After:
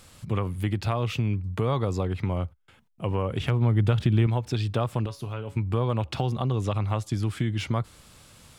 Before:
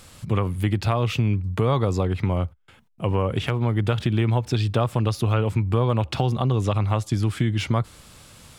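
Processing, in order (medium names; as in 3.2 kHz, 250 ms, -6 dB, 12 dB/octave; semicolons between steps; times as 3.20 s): 3.40–4.27 s: bass shelf 220 Hz +7.5 dB; 5.06–5.57 s: feedback comb 140 Hz, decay 0.25 s, harmonics all, mix 70%; trim -4.5 dB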